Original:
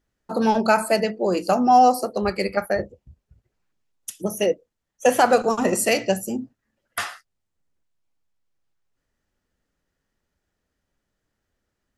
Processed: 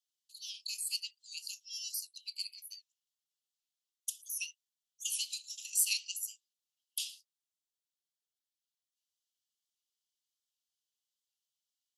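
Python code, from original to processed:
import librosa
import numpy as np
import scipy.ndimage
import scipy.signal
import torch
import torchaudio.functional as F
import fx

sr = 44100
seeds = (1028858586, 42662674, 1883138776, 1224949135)

y = scipy.signal.sosfilt(scipy.signal.butter(12, 2900.0, 'highpass', fs=sr, output='sos'), x)
y = fx.record_warp(y, sr, rpm=78.0, depth_cents=100.0)
y = y * 10.0 ** (-3.5 / 20.0)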